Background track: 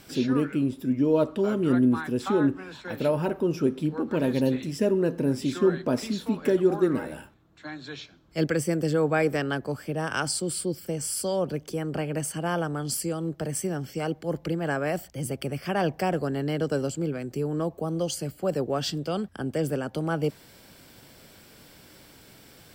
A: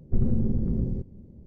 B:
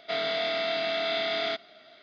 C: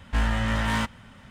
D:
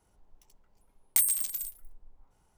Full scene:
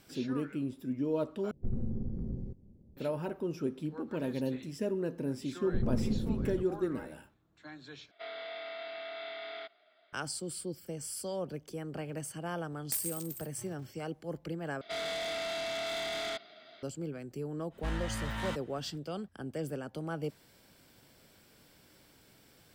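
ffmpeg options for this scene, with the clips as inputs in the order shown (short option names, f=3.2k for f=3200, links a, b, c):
-filter_complex "[1:a]asplit=2[a][b];[2:a]asplit=2[c][d];[0:a]volume=-10dB[e];[a]equalizer=f=770:t=o:w=0.21:g=2.5[f];[b]lowshelf=f=280:g=-9.5[g];[c]highpass=430,lowpass=3k[h];[4:a]aeval=exprs='val(0)*sgn(sin(2*PI*120*n/s))':c=same[i];[d]asoftclip=type=tanh:threshold=-31dB[j];[3:a]equalizer=f=3.8k:t=o:w=0.23:g=5[k];[e]asplit=4[l][m][n][o];[l]atrim=end=1.514[p];[f]atrim=end=1.46,asetpts=PTS-STARTPTS,volume=-11dB[q];[m]atrim=start=2.966:end=8.114[r];[h]atrim=end=2.02,asetpts=PTS-STARTPTS,volume=-12dB[s];[n]atrim=start=10.126:end=14.814[t];[j]atrim=end=2.02,asetpts=PTS-STARTPTS,volume=-2dB[u];[o]atrim=start=16.826[v];[g]atrim=end=1.46,asetpts=PTS-STARTPTS,volume=-0.5dB,afade=t=in:d=0.004:c=hsin,afade=t=out:st=1.456:d=0.004:c=hsin,adelay=247401S[w];[i]atrim=end=2.57,asetpts=PTS-STARTPTS,volume=-10.5dB,afade=t=in:d=0.004:c=hsin,afade=t=out:st=2.566:d=0.004:c=hsin,adelay=11760[x];[k]atrim=end=1.3,asetpts=PTS-STARTPTS,volume=-12dB,afade=t=in:d=0.05,afade=t=out:st=1.25:d=0.05,adelay=17700[y];[p][q]acrossfade=d=0.004:c1=hsin:c2=hsin[z];[z][r]acrossfade=d=0.004:c1=hsin:c2=hsin[aa];[aa][s]acrossfade=d=0.004:c1=hsin:c2=hsin[ab];[ab][t]acrossfade=d=0.004:c1=hsin:c2=hsin[ac];[ac][u]acrossfade=d=0.004:c1=hsin:c2=hsin[ad];[ad][v]acrossfade=d=0.004:c1=hsin:c2=hsin[ae];[ae][w][x][y]amix=inputs=4:normalize=0"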